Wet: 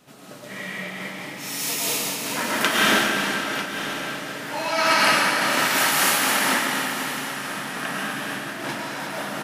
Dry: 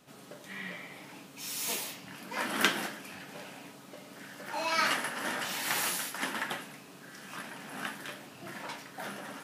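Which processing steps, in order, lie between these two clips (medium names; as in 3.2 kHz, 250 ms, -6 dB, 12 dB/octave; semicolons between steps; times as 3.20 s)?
on a send: delay 945 ms -12.5 dB; on the sum: algorithmic reverb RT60 3.9 s, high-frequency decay 0.95×, pre-delay 70 ms, DRR -7 dB; random flutter of the level, depth 55%; trim +7 dB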